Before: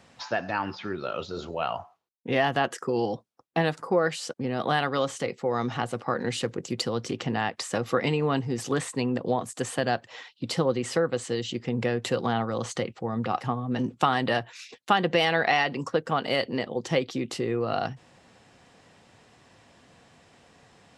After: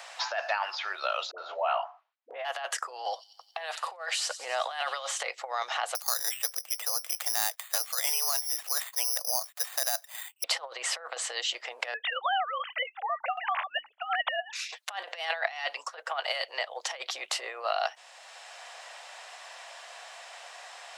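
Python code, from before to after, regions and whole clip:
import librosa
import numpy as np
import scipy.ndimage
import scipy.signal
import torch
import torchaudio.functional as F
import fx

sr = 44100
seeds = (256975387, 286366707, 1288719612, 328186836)

y = fx.chain(x, sr, fx.lowpass(hz=1800.0, slope=12),
    fx.dispersion(late='highs', ms=72.0, hz=720.0), at=(1.31, 2.45))
y = fx.chain(y, sr, fx.hum_notches(base_hz=60, count=4),
    fx.echo_wet_highpass(ms=91, feedback_pct=64, hz=4500.0, wet_db=-10.5), at=(3.02, 5.23))
y = fx.chain(y, sr, fx.pre_emphasis(coefficient=0.8),
    fx.resample_bad(factor=8, down='filtered', up='zero_stuff'), at=(5.95, 10.44))
y = fx.chain(y, sr, fx.sine_speech(),
    fx.highpass(hz=630.0, slope=24), at=(11.94, 14.53))
y = fx.chain(y, sr, fx.low_shelf(hz=120.0, db=-11.0),
    fx.band_widen(depth_pct=70), at=(15.29, 16.8))
y = fx.over_compress(y, sr, threshold_db=-29.0, ratio=-0.5)
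y = scipy.signal.sosfilt(scipy.signal.ellip(4, 1.0, 70, 630.0, 'highpass', fs=sr, output='sos'), y)
y = fx.band_squash(y, sr, depth_pct=40)
y = y * 10.0 ** (2.5 / 20.0)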